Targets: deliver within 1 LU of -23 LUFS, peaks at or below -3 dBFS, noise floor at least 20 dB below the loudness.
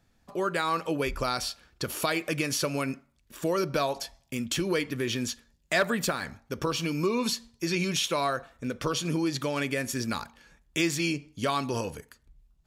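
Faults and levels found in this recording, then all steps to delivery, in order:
loudness -29.5 LUFS; peak -13.0 dBFS; loudness target -23.0 LUFS
-> gain +6.5 dB

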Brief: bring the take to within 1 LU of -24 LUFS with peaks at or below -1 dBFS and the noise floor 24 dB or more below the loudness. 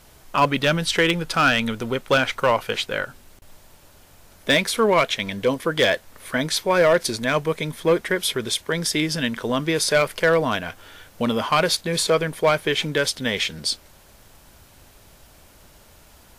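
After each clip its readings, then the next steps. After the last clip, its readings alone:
clipped 0.4%; flat tops at -10.5 dBFS; loudness -21.5 LUFS; peak -10.5 dBFS; loudness target -24.0 LUFS
-> clip repair -10.5 dBFS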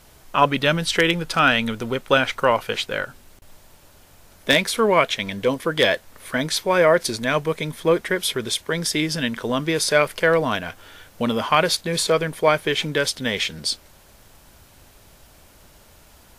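clipped 0.0%; loudness -21.0 LUFS; peak -1.5 dBFS; loudness target -24.0 LUFS
-> gain -3 dB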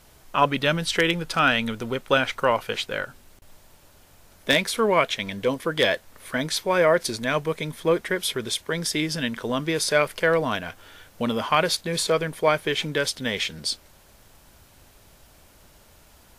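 loudness -24.0 LUFS; peak -4.5 dBFS; noise floor -54 dBFS

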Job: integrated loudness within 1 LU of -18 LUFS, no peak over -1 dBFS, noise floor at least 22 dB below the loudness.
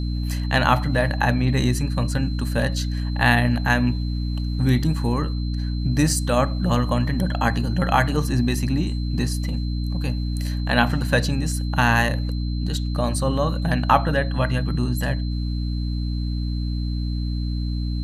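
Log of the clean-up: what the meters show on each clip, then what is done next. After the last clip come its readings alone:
hum 60 Hz; harmonics up to 300 Hz; hum level -22 dBFS; steady tone 4100 Hz; tone level -41 dBFS; loudness -22.5 LUFS; peak -2.0 dBFS; loudness target -18.0 LUFS
-> notches 60/120/180/240/300 Hz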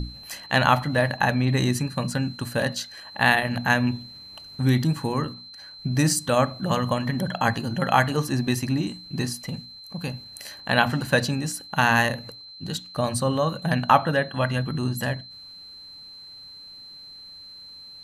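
hum none; steady tone 4100 Hz; tone level -41 dBFS
-> notch 4100 Hz, Q 30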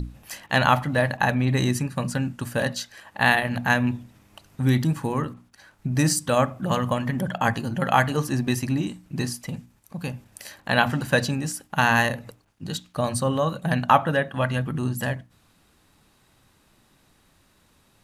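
steady tone none; loudness -24.0 LUFS; peak -2.5 dBFS; loudness target -18.0 LUFS
-> gain +6 dB; limiter -1 dBFS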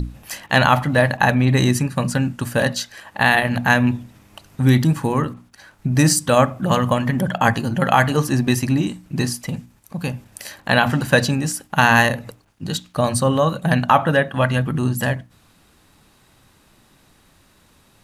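loudness -18.5 LUFS; peak -1.0 dBFS; noise floor -56 dBFS

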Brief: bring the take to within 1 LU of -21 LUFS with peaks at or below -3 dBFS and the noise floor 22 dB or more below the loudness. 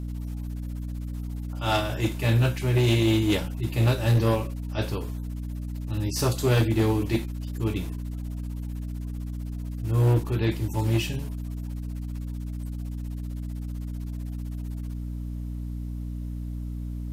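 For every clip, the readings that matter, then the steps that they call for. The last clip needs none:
clipped 0.9%; flat tops at -16.0 dBFS; hum 60 Hz; harmonics up to 300 Hz; hum level -30 dBFS; loudness -28.0 LUFS; peak -16.0 dBFS; loudness target -21.0 LUFS
-> clip repair -16 dBFS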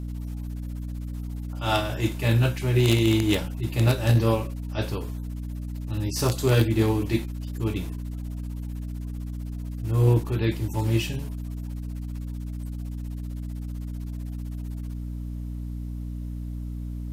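clipped 0.0%; hum 60 Hz; harmonics up to 480 Hz; hum level -29 dBFS
-> de-hum 60 Hz, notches 8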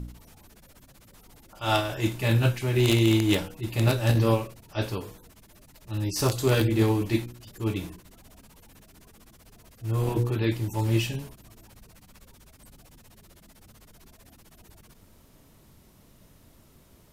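hum none; loudness -26.0 LUFS; peak -6.5 dBFS; loudness target -21.0 LUFS
-> gain +5 dB; limiter -3 dBFS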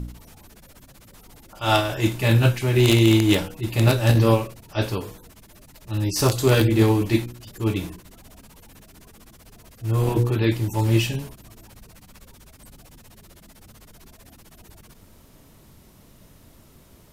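loudness -21.0 LUFS; peak -3.0 dBFS; noise floor -52 dBFS

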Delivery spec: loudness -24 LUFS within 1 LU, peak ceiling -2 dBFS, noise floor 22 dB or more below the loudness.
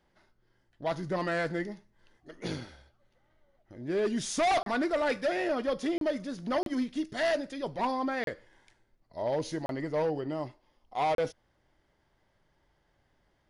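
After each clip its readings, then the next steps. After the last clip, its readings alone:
dropouts 6; longest dropout 32 ms; loudness -31.5 LUFS; peak -21.5 dBFS; loudness target -24.0 LUFS
-> interpolate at 4.63/5.98/6.63/8.24/9.66/11.15, 32 ms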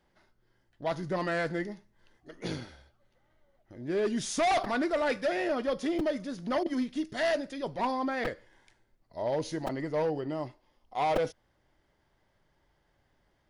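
dropouts 0; loudness -31.5 LUFS; peak -14.5 dBFS; loudness target -24.0 LUFS
-> gain +7.5 dB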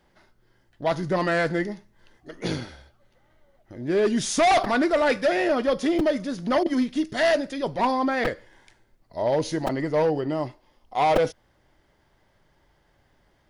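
loudness -24.0 LUFS; peak -7.0 dBFS; noise floor -65 dBFS

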